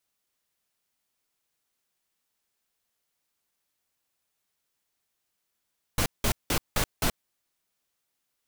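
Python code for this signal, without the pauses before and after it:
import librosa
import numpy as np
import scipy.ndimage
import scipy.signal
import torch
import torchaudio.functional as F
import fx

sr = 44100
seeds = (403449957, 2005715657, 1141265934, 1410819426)

y = fx.noise_burst(sr, seeds[0], colour='pink', on_s=0.08, off_s=0.18, bursts=5, level_db=-24.5)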